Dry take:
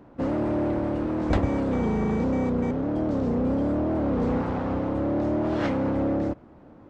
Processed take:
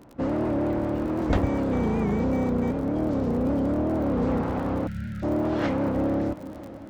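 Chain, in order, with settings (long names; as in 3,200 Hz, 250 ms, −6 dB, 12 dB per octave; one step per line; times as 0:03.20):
surface crackle 52 per second −37 dBFS
on a send: feedback delay with all-pass diffusion 531 ms, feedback 58%, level −16 dB
on the sum: gain on a spectral selection 0:04.87–0:05.23, 230–1,300 Hz −29 dB
wow of a warped record 78 rpm, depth 100 cents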